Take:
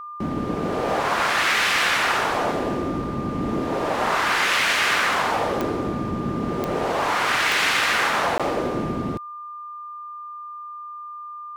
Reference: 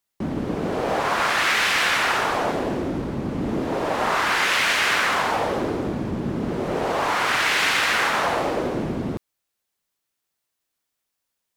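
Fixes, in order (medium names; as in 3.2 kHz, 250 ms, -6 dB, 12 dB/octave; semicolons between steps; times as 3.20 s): de-click; band-stop 1.2 kHz, Q 30; interpolate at 8.38 s, 16 ms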